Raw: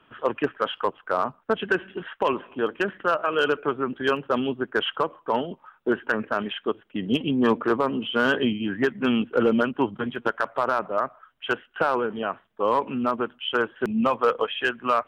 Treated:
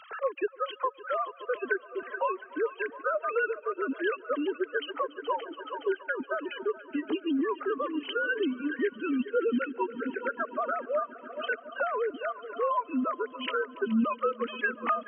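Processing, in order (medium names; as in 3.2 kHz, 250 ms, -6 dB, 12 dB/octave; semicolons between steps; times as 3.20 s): formants replaced by sine waves; on a send: multi-head delay 141 ms, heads all three, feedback 69%, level -18 dB; on the sum: reverb removal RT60 1.3 s; three bands compressed up and down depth 70%; trim -5.5 dB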